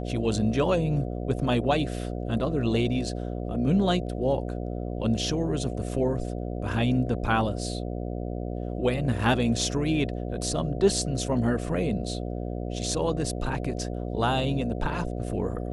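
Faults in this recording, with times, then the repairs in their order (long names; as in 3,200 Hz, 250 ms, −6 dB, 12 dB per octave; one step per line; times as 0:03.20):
mains buzz 60 Hz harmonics 12 −32 dBFS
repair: hum removal 60 Hz, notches 12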